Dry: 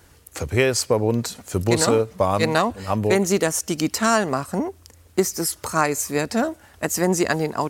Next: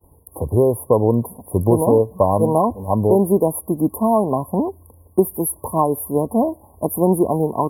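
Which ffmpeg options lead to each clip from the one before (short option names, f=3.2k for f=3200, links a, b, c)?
-af "afftfilt=real='re*(1-between(b*sr/4096,1100,9600))':imag='im*(1-between(b*sr/4096,1100,9600))':win_size=4096:overlap=0.75,agate=range=-33dB:threshold=-49dB:ratio=3:detection=peak,volume=4.5dB"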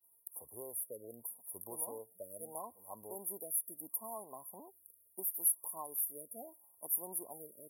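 -af "aderivative,afftfilt=real='re*(1-between(b*sr/1024,880*pow(4100/880,0.5+0.5*sin(2*PI*0.76*pts/sr))/1.41,880*pow(4100/880,0.5+0.5*sin(2*PI*0.76*pts/sr))*1.41))':imag='im*(1-between(b*sr/1024,880*pow(4100/880,0.5+0.5*sin(2*PI*0.76*pts/sr))/1.41,880*pow(4100/880,0.5+0.5*sin(2*PI*0.76*pts/sr))*1.41))':win_size=1024:overlap=0.75,volume=-9dB"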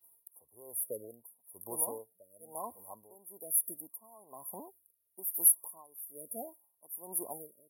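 -af "aeval=exprs='val(0)*pow(10,-20*(0.5-0.5*cos(2*PI*1.1*n/s))/20)':c=same,volume=7.5dB"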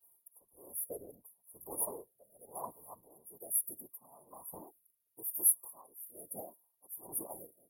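-af "afftfilt=real='hypot(re,im)*cos(2*PI*random(0))':imag='hypot(re,im)*sin(2*PI*random(1))':win_size=512:overlap=0.75,volume=3dB"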